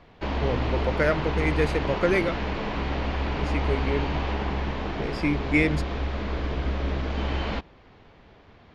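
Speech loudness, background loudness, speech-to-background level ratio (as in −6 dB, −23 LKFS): −27.5 LKFS, −29.0 LKFS, 1.5 dB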